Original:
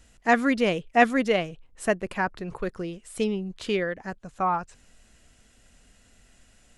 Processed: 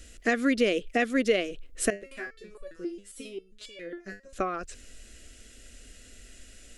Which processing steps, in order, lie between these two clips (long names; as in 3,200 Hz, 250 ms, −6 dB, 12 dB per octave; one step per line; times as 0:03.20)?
downward compressor 6 to 1, threshold −27 dBFS, peak gain reduction 14 dB
phaser with its sweep stopped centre 370 Hz, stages 4
0:01.90–0:04.33: step-sequenced resonator 7.4 Hz 100–570 Hz
level +9 dB